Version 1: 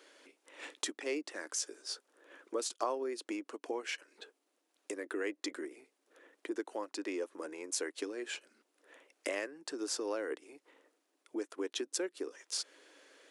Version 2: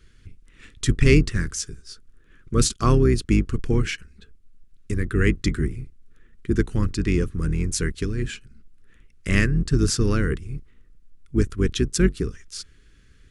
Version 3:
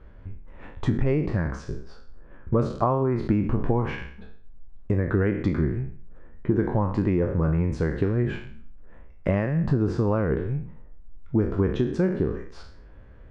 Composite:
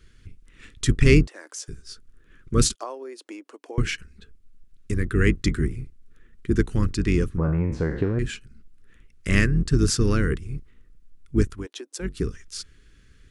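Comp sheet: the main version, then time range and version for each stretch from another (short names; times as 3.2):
2
1.27–1.68 from 1
2.75–3.78 from 1
7.38–8.19 from 3
11.55–12.11 from 1, crossfade 0.24 s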